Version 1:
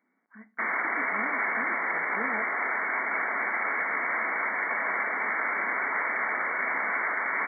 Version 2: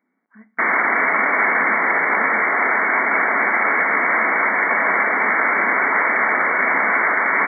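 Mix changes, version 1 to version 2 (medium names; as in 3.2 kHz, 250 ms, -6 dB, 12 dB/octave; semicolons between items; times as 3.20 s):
background +10.5 dB; master: add bass shelf 490 Hz +5 dB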